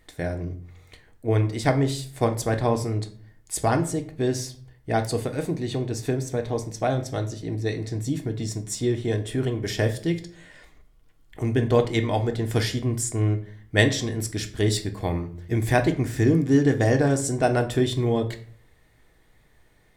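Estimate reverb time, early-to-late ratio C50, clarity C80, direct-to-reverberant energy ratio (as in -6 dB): 0.50 s, 13.5 dB, 17.5 dB, 5.0 dB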